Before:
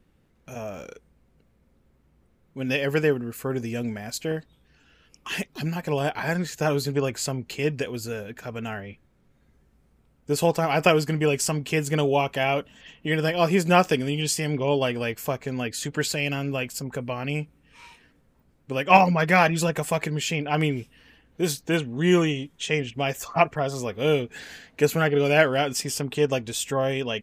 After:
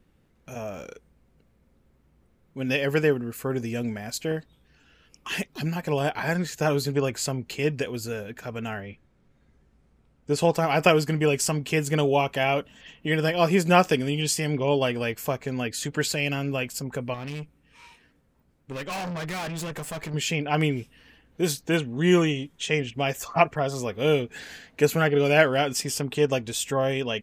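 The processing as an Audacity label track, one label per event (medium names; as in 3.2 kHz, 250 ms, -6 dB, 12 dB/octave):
8.850000	10.520000	Bessel low-pass 7.6 kHz
17.140000	20.140000	valve stage drive 30 dB, bias 0.55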